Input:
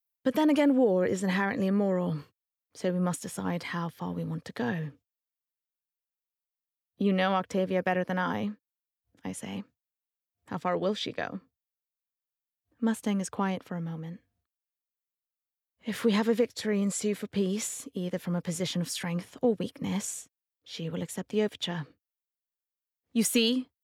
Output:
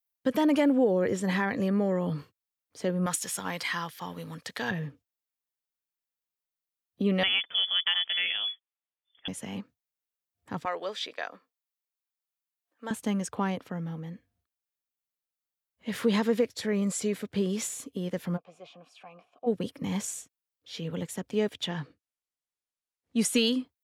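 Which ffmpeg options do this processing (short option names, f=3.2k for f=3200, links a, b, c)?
-filter_complex "[0:a]asettb=1/sr,asplit=3[a][b][c];[a]atrim=end=3.064[d];[b]atrim=start=3.06:end=4.71,asetpts=PTS-STARTPTS,afade=t=in:d=0.004:c=qsin,afade=t=out:st=1.646:d=0.004:c=qsin,tiltshelf=f=790:g=-8.5[e];[c]atrim=start=4.706[f];[d][e]acrossfade=d=0.004:c1=hsin:c2=qsin[g];[g][f]acrossfade=d=0.004:c1=qsin:c2=hsin,asettb=1/sr,asplit=3[h][i][j];[h]atrim=end=7.234[k];[i]atrim=start=7.23:end=9.28,asetpts=PTS-STARTPTS,afade=t=in:d=0.004:c=qsin,afade=t=out:st=2.046:d=0.004:c=qsin,lowpass=f=3.1k:t=q:w=0.5098,lowpass=f=3.1k:t=q:w=0.6013,lowpass=f=3.1k:t=q:w=0.9,lowpass=f=3.1k:t=q:w=2.563,afreqshift=-3600[l];[j]atrim=start=9.276[m];[k][l]acrossfade=d=0.004:c1=hsin:c2=qsin[n];[n][m]acrossfade=d=0.004:c1=qsin:c2=hsin,asettb=1/sr,asplit=3[o][p][q];[o]atrim=end=10.654[r];[p]atrim=start=10.65:end=12.91,asetpts=PTS-STARTPTS,afade=t=in:d=0.004:c=qsin,afade=t=out:st=2.256:d=0.004:c=qsin,highpass=640[s];[q]atrim=start=12.906[t];[r][s]acrossfade=d=0.004:c1=hsin:c2=qsin[u];[u][t]acrossfade=d=0.004:c1=qsin:c2=hsin,asplit=3[v][w][x];[v]afade=t=out:st=18.36:d=0.02[y];[w]asplit=3[z][aa][ab];[z]bandpass=f=730:t=q:w=8,volume=0dB[ac];[aa]bandpass=f=1.09k:t=q:w=8,volume=-6dB[ad];[ab]bandpass=f=2.44k:t=q:w=8,volume=-9dB[ae];[ac][ad][ae]amix=inputs=3:normalize=0,afade=t=in:st=18.36:d=0.02,afade=t=out:st=19.46:d=0.02[af];[x]afade=t=in:st=19.46:d=0.02[ag];[y][af][ag]amix=inputs=3:normalize=0,asettb=1/sr,asplit=3[ah][ai][aj];[ah]atrim=end=21.704[ak];[ai]atrim=start=21.7:end=23.38,asetpts=PTS-STARTPTS,afade=t=in:d=0.004:c=qsin,afade=t=out:st=1.676:d=0.004:c=qsin,lowpass=f=11k:w=0.5412,lowpass=f=11k:w=1.3066[al];[aj]atrim=start=23.376[am];[ak][al]acrossfade=d=0.004:c1=hsin:c2=qsin[an];[an][am]acrossfade=d=0.004:c1=qsin:c2=hsin"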